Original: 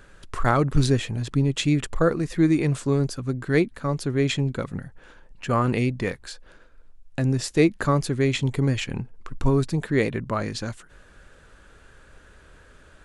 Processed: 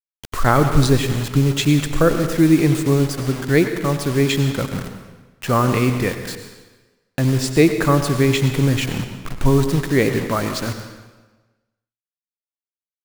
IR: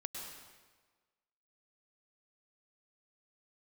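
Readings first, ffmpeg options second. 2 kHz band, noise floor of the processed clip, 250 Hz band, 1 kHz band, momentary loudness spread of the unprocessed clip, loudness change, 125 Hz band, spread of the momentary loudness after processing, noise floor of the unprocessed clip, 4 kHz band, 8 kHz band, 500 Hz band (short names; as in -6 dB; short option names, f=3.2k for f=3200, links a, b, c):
+6.0 dB, under -85 dBFS, +6.0 dB, +6.0 dB, 13 LU, +5.5 dB, +5.5 dB, 13 LU, -53 dBFS, +6.5 dB, +8.0 dB, +5.5 dB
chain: -filter_complex "[0:a]acrusher=bits=5:mix=0:aa=0.000001,asplit=2[a][b];[1:a]atrim=start_sample=2205,asetrate=48510,aresample=44100[c];[b][c]afir=irnorm=-1:irlink=0,volume=2.5dB[d];[a][d]amix=inputs=2:normalize=0"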